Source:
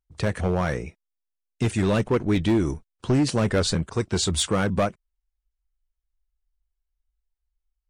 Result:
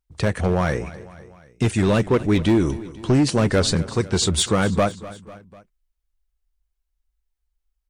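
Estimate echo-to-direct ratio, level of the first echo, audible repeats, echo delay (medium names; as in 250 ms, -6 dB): -16.0 dB, -17.5 dB, 3, 248 ms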